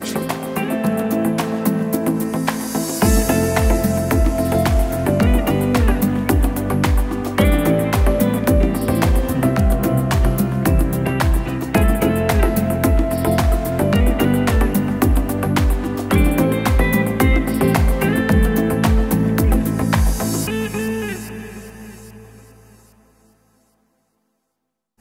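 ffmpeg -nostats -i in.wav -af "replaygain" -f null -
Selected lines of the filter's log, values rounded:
track_gain = +0.5 dB
track_peak = 0.563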